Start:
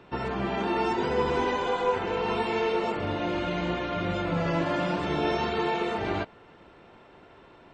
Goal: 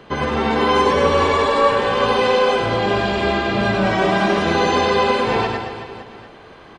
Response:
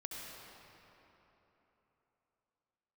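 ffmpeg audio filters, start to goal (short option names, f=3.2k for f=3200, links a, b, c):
-af "aecho=1:1:110|247.5|419.4|634.2|902.8:0.631|0.398|0.251|0.158|0.1,asetrate=50274,aresample=44100,volume=8.5dB"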